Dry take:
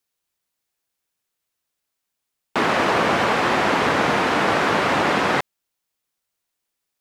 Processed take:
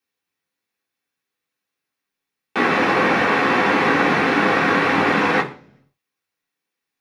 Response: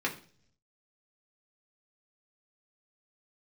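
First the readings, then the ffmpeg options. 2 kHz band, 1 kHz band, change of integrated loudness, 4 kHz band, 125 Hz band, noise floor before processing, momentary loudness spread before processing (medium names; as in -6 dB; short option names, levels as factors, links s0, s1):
+3.5 dB, +1.0 dB, +2.0 dB, -1.5 dB, +1.0 dB, -80 dBFS, 4 LU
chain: -filter_complex "[1:a]atrim=start_sample=2205[s0];[0:a][s0]afir=irnorm=-1:irlink=0,volume=0.562"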